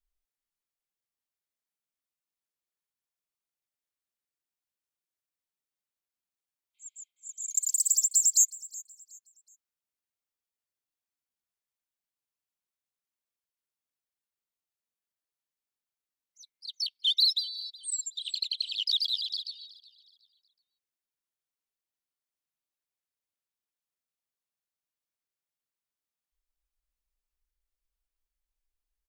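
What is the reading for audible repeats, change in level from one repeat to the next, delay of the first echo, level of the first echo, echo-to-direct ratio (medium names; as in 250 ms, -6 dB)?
2, -9.5 dB, 370 ms, -20.0 dB, -19.5 dB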